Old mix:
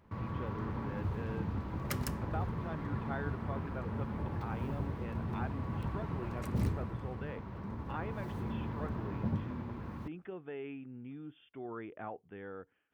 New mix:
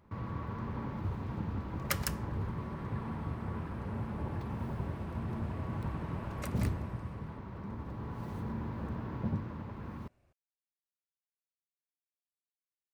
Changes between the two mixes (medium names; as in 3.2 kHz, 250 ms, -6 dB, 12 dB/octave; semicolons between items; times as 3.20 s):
speech: muted; second sound +6.5 dB